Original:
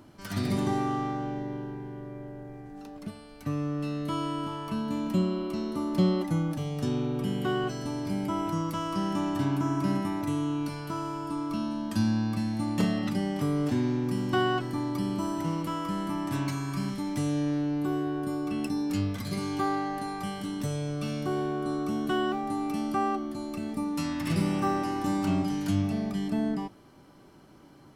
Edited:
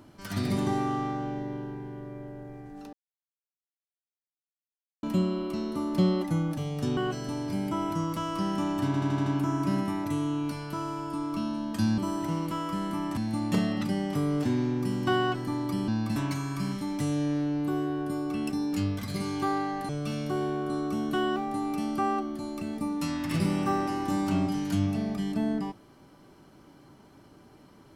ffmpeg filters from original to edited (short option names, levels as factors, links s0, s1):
-filter_complex "[0:a]asplit=14[s0][s1][s2][s3][s4][s5][s6][s7][s8][s9][s10][s11][s12][s13];[s0]atrim=end=2.93,asetpts=PTS-STARTPTS,afade=t=out:st=2.926:d=0.004:c=hsin[s14];[s1]atrim=start=2.93:end=5.03,asetpts=PTS-STARTPTS,volume=0[s15];[s2]atrim=start=5.03:end=6.972,asetpts=PTS-STARTPTS,afade=t=in:d=0.004:c=hsin[s16];[s3]atrim=start=7.538:end=9.512[s17];[s4]atrim=start=9.428:end=9.512[s18];[s5]atrim=start=9.428:end=9.512[s19];[s6]atrim=start=9.428:end=9.512[s20];[s7]atrim=start=9.428:end=9.512[s21];[s8]atrim=start=9.428:end=12.152[s22];[s9]atrim=start=15.138:end=16.332[s23];[s10]atrim=start=12.428:end=15.142[s24];[s11]atrim=start=12.148:end=12.432[s25];[s12]atrim=start=16.328:end=20.062[s26];[s13]atrim=start=20.848[s27];[s14][s15][s16]concat=n=3:v=0:a=1[s28];[s28][s17]acrossfade=d=0.004:c1=hsin:c2=hsin[s29];[s29][s18]acrossfade=d=0.004:c1=hsin:c2=hsin[s30];[s30][s19]acrossfade=d=0.004:c1=hsin:c2=hsin[s31];[s31][s20]acrossfade=d=0.004:c1=hsin:c2=hsin[s32];[s32][s21]acrossfade=d=0.004:c1=hsin:c2=hsin[s33];[s33][s22]acrossfade=d=0.004:c1=hsin:c2=hsin[s34];[s34][s23]acrossfade=d=0.004:c1=hsin:c2=hsin[s35];[s35][s24]acrossfade=d=0.004:c1=hsin:c2=hsin[s36];[s36][s25]acrossfade=d=0.004:c1=hsin:c2=hsin[s37];[s37][s26]acrossfade=d=0.004:c1=hsin:c2=hsin[s38];[s38][s27]acrossfade=d=0.004:c1=hsin:c2=hsin"